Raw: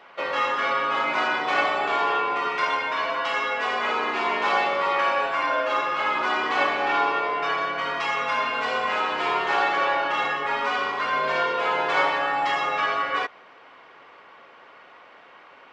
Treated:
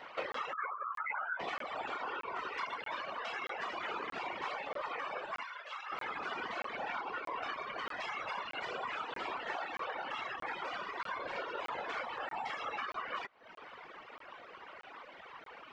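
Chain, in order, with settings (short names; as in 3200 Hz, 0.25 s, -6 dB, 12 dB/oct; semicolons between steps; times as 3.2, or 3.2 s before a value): 0.53–1.4 spectral contrast raised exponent 3.6; compressor 6:1, threshold -36 dBFS, peak gain reduction 17.5 dB; 5.43–5.92 HPF 1300 Hz 12 dB/oct; whisperiser; reverb removal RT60 0.98 s; crackling interface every 0.63 s, samples 1024, zero, from 0.32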